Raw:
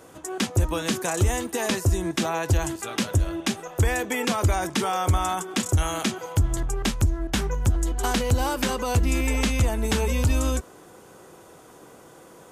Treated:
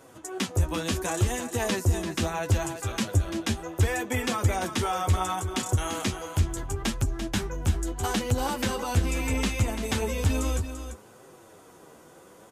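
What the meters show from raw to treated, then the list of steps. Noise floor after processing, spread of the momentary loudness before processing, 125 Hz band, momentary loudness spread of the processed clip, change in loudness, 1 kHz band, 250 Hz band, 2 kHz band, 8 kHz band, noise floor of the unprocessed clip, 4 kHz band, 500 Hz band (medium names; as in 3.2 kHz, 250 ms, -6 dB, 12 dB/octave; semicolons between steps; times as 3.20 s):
-52 dBFS, 4 LU, -2.5 dB, 5 LU, -3.0 dB, -3.0 dB, -3.0 dB, -3.0 dB, -3.0 dB, -49 dBFS, -3.0 dB, -3.0 dB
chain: flange 0.71 Hz, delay 7.2 ms, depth 6.1 ms, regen +23%; delay 341 ms -9.5 dB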